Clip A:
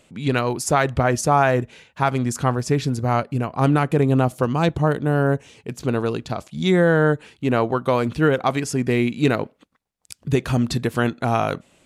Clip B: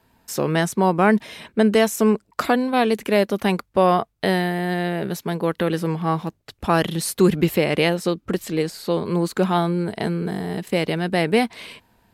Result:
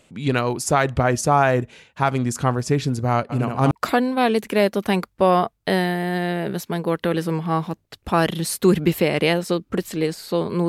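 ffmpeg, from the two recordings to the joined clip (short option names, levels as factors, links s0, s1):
-filter_complex "[0:a]asplit=3[s0][s1][s2];[s0]afade=t=out:st=3.29:d=0.02[s3];[s1]aecho=1:1:71|142|213|284:0.631|0.215|0.0729|0.0248,afade=t=in:st=3.29:d=0.02,afade=t=out:st=3.71:d=0.02[s4];[s2]afade=t=in:st=3.71:d=0.02[s5];[s3][s4][s5]amix=inputs=3:normalize=0,apad=whole_dur=10.68,atrim=end=10.68,atrim=end=3.712[s6];[1:a]atrim=start=2.268:end=9.24[s7];[s6][s7]acrossfade=d=0.004:c1=hsin:c2=hsin"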